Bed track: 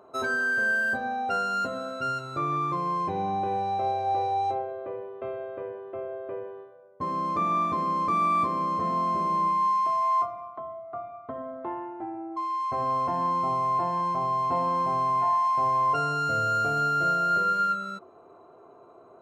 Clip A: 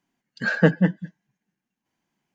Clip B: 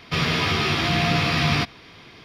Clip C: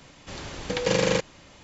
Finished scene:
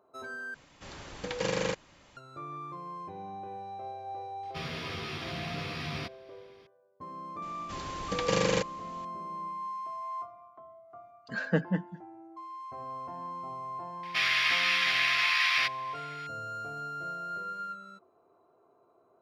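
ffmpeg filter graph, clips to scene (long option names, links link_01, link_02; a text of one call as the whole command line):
ffmpeg -i bed.wav -i cue0.wav -i cue1.wav -i cue2.wav -filter_complex "[3:a]asplit=2[link_01][link_02];[2:a]asplit=2[link_03][link_04];[0:a]volume=-13.5dB[link_05];[link_01]equalizer=frequency=1200:width_type=o:width=1.7:gain=3.5[link_06];[link_04]highpass=frequency=1900:width_type=q:width=2.2[link_07];[link_05]asplit=2[link_08][link_09];[link_08]atrim=end=0.544[link_10];[link_06]atrim=end=1.63,asetpts=PTS-STARTPTS,volume=-9dB[link_11];[link_09]atrim=start=2.166[link_12];[link_03]atrim=end=2.24,asetpts=PTS-STARTPTS,volume=-16dB,afade=type=in:duration=0.004:curve=hsin,afade=type=out:start_time=2.236:duration=0.004:curve=hsin,adelay=4430[link_13];[link_02]atrim=end=1.63,asetpts=PTS-STARTPTS,volume=-4.5dB,afade=type=in:duration=0.004:curve=hsin,afade=type=out:start_time=1.626:duration=0.004:curve=hsin,adelay=7420[link_14];[1:a]atrim=end=2.34,asetpts=PTS-STARTPTS,volume=-10.5dB,afade=type=in:duration=0.004:curve=hsin,afade=type=out:start_time=2.336:duration=0.004:curve=hsin,adelay=480690S[link_15];[link_07]atrim=end=2.24,asetpts=PTS-STARTPTS,volume=-6dB,afade=type=in:duration=0.004:curve=hsin,afade=type=out:start_time=2.236:duration=0.004:curve=hsin,adelay=14030[link_16];[link_10][link_11]acrossfade=duration=0.004:curve1=hsin:curve2=hsin[link_17];[link_17][link_12]acrossfade=duration=0.004:curve1=hsin:curve2=hsin[link_18];[link_18][link_13][link_14][link_15][link_16]amix=inputs=5:normalize=0" out.wav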